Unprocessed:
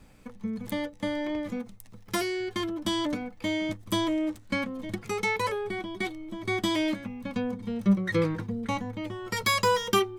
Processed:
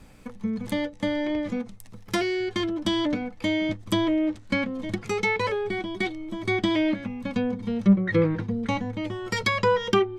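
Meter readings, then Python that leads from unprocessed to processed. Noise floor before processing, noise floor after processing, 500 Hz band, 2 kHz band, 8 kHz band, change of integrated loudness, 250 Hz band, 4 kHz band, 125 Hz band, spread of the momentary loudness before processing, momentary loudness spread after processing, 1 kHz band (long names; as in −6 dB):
−51 dBFS, −46 dBFS, +4.0 dB, +3.0 dB, −4.0 dB, +3.5 dB, +4.5 dB, +1.0 dB, +4.5 dB, 11 LU, 9 LU, +0.5 dB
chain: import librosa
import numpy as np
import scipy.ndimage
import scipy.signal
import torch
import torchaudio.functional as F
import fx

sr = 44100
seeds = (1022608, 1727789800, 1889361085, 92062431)

y = fx.dynamic_eq(x, sr, hz=1100.0, q=2.1, threshold_db=-46.0, ratio=4.0, max_db=-5)
y = fx.env_lowpass_down(y, sr, base_hz=2000.0, full_db=-22.0)
y = y * librosa.db_to_amplitude(4.5)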